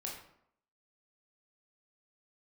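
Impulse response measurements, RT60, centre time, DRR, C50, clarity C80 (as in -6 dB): 0.70 s, 38 ms, -2.5 dB, 4.0 dB, 7.5 dB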